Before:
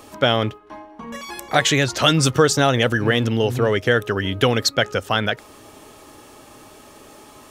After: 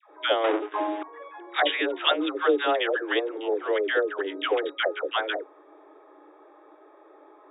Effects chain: Wiener smoothing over 15 samples; dispersion lows, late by 0.127 s, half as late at 660 Hz; 0.44–1.03 sample leveller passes 5; FFT band-pass 290–3800 Hz; gain -5 dB

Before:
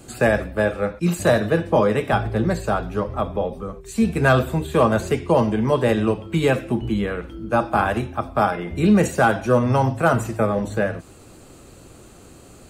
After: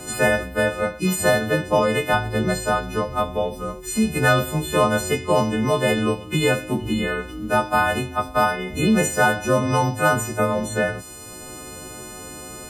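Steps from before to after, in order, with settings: frequency quantiser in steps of 3 st; three-band squash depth 40%; gain -1.5 dB

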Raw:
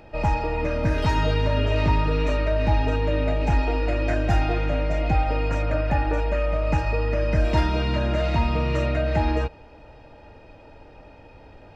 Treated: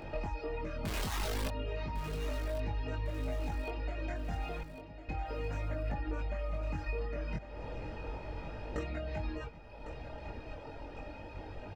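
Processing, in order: 0.85–1.48 infinite clipping; reverb removal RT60 0.89 s; limiter -17.5 dBFS, peak gain reduction 6.5 dB; 7.36–8.76 room tone; compressor 12:1, threshold -38 dBFS, peak gain reduction 17 dB; chorus voices 2, 0.34 Hz, delay 22 ms, depth 2.6 ms; 4.63–5.09 band-pass 210 Hz, Q 1.8; feedback echo 1.103 s, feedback 52%, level -12 dB; gain +6 dB

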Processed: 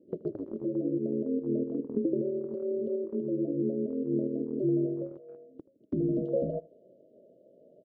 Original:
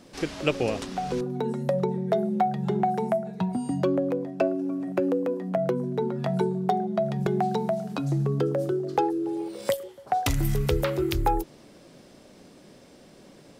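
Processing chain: ring modulator 57 Hz; compressor 2.5:1, threshold -37 dBFS, peak gain reduction 12 dB; brick-wall FIR band-stop 380–1600 Hz; low-pass sweep 190 Hz -> 400 Hz, 10.41–11.44; HPF 89 Hz 12 dB/oct; gate -41 dBFS, range -12 dB; on a send: echo 0.136 s -21 dB; on the sum: speed mistake 45 rpm record played at 78 rpm; gain +6.5 dB

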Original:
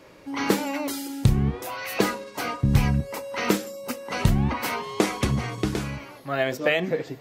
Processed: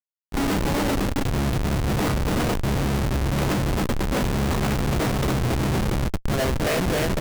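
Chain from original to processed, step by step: bouncing-ball echo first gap 0.28 s, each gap 0.8×, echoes 5; Schmitt trigger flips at -23.5 dBFS; harmoniser -3 st -12 dB; gain +1.5 dB

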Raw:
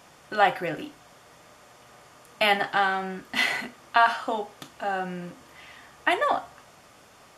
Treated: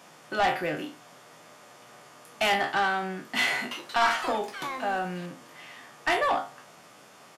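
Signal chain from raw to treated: spectral trails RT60 0.31 s; HPF 130 Hz 24 dB/oct; soft clip -18.5 dBFS, distortion -10 dB; 3.53–5.72 echoes that change speed 0.181 s, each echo +6 st, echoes 3, each echo -6 dB; downsampling 32000 Hz

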